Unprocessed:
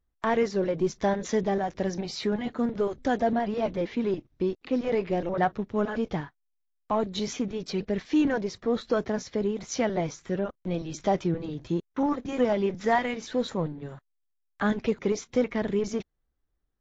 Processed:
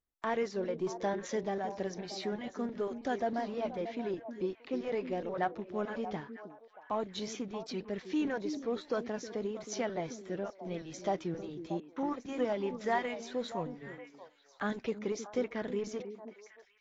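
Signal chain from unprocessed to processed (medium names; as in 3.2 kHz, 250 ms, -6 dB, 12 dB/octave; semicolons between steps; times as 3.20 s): bass shelf 140 Hz -11.5 dB; on a send: repeats whose band climbs or falls 315 ms, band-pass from 290 Hz, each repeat 1.4 oct, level -6.5 dB; on the sum: trim -7 dB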